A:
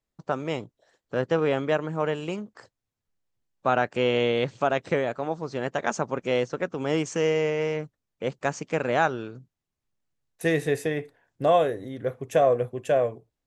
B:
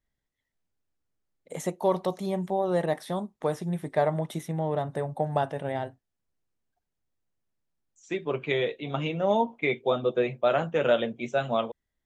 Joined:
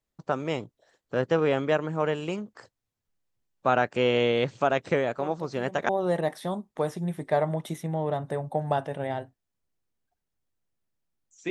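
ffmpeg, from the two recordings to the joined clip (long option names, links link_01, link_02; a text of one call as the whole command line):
ffmpeg -i cue0.wav -i cue1.wav -filter_complex "[1:a]asplit=2[link_01][link_02];[0:a]apad=whole_dur=11.5,atrim=end=11.5,atrim=end=5.892[link_03];[link_02]atrim=start=2.538:end=8.15[link_04];[link_01]atrim=start=1.83:end=2.54,asetpts=PTS-STARTPTS,volume=-15.5dB,afade=type=in:duration=0.004:curve=hsin,afade=type=out:start_time=0.706:duration=0.004:curve=hsin,adelay=5180[link_05];[link_03][link_04]acrossfade=duration=0.004:curve1=hsin:curve2=hsin[link_06];[link_06][link_05]amix=inputs=2:normalize=0" out.wav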